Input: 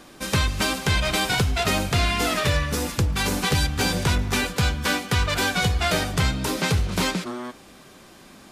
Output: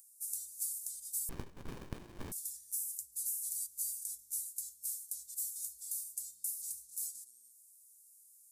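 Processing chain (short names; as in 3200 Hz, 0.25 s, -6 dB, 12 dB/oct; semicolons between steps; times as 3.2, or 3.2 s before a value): inverse Chebyshev high-pass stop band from 2900 Hz, stop band 60 dB; upward compressor, threshold -59 dBFS; 1.29–2.32 running maximum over 65 samples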